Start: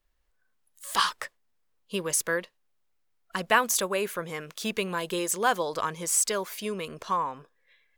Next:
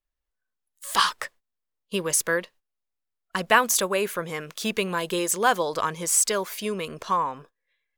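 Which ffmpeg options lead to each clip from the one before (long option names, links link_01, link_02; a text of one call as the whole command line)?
ffmpeg -i in.wav -af "agate=range=-15dB:threshold=-52dB:ratio=16:detection=peak,volume=3.5dB" out.wav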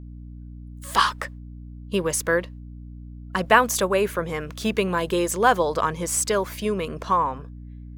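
ffmpeg -i in.wav -af "highshelf=frequency=2200:gain=-8.5,aeval=exprs='val(0)+0.00794*(sin(2*PI*60*n/s)+sin(2*PI*2*60*n/s)/2+sin(2*PI*3*60*n/s)/3+sin(2*PI*4*60*n/s)/4+sin(2*PI*5*60*n/s)/5)':channel_layout=same,volume=4.5dB" out.wav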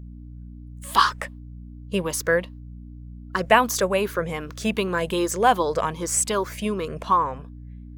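ffmpeg -i in.wav -af "afftfilt=real='re*pow(10,7/40*sin(2*PI*(0.53*log(max(b,1)*sr/1024/100)/log(2)-(2.6)*(pts-256)/sr)))':imag='im*pow(10,7/40*sin(2*PI*(0.53*log(max(b,1)*sr/1024/100)/log(2)-(2.6)*(pts-256)/sr)))':win_size=1024:overlap=0.75,volume=-1dB" out.wav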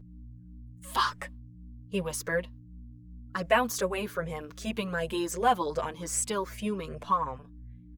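ffmpeg -i in.wav -filter_complex "[0:a]asplit=2[link_01][link_02];[link_02]adelay=6.4,afreqshift=-2.7[link_03];[link_01][link_03]amix=inputs=2:normalize=1,volume=-4.5dB" out.wav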